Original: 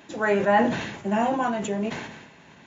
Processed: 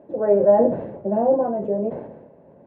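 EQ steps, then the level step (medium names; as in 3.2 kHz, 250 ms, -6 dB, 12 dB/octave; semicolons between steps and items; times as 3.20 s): resonant low-pass 550 Hz, resonance Q 4.9; -1.0 dB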